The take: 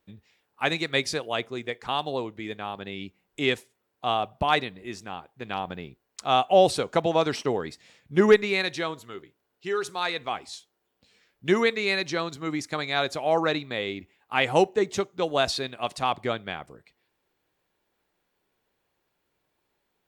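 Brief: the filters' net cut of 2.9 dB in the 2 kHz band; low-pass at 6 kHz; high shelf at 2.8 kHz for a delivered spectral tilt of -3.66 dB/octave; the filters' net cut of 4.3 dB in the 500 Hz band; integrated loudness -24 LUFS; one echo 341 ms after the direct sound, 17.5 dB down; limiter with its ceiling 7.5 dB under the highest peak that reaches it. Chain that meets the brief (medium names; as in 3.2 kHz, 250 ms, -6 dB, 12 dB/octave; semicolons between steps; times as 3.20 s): low-pass 6 kHz; peaking EQ 500 Hz -5.5 dB; peaking EQ 2 kHz -6.5 dB; treble shelf 2.8 kHz +7.5 dB; peak limiter -16 dBFS; delay 341 ms -17.5 dB; trim +6.5 dB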